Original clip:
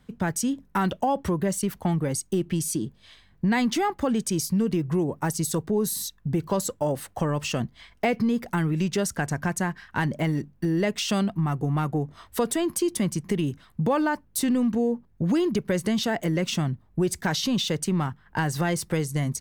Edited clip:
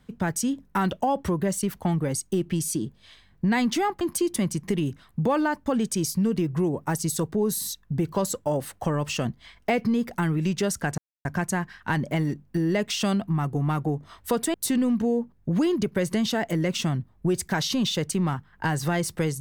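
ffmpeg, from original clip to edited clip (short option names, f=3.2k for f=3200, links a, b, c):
-filter_complex "[0:a]asplit=5[a][b][c][d][e];[a]atrim=end=4.012[f];[b]atrim=start=12.618:end=14.272[g];[c]atrim=start=4.008:end=9.33,asetpts=PTS-STARTPTS,afade=t=out:st=5.318:d=0.004:c=hsin,apad=pad_dur=0.27[h];[d]atrim=start=9.33:end=12.622,asetpts=PTS-STARTPTS,afade=t=in:d=0.004:c=hsin[i];[e]atrim=start=14.268[j];[f][g]acrossfade=d=0.004:c1=hsin:c2=hsin[k];[h][i]concat=n=2:v=0:a=1[l];[k][l]acrossfade=d=0.004:c1=hsin:c2=hsin[m];[m][j]acrossfade=d=0.004:c1=hsin:c2=hsin"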